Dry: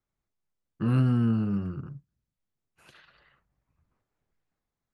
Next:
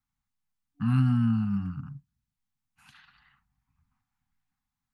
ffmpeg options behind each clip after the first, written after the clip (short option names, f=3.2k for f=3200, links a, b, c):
-af "afftfilt=real='re*(1-between(b*sr/4096,290,730))':imag='im*(1-between(b*sr/4096,290,730))':win_size=4096:overlap=0.75"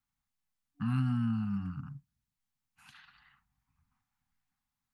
-filter_complex "[0:a]lowshelf=f=330:g=-3.5,asplit=2[a][b];[b]acompressor=threshold=-33dB:ratio=6,volume=1dB[c];[a][c]amix=inputs=2:normalize=0,volume=-7dB"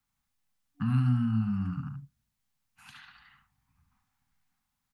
-filter_complex "[0:a]aecho=1:1:72:0.447,acrossover=split=190[a][b];[b]acompressor=threshold=-41dB:ratio=2[c];[a][c]amix=inputs=2:normalize=0,volume=5dB"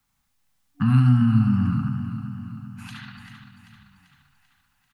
-af "aecho=1:1:390|780|1170|1560|1950|2340:0.316|0.171|0.0922|0.0498|0.0269|0.0145,volume=9dB"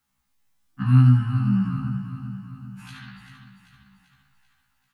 -af "afftfilt=real='re*1.73*eq(mod(b,3),0)':imag='im*1.73*eq(mod(b,3),0)':win_size=2048:overlap=0.75"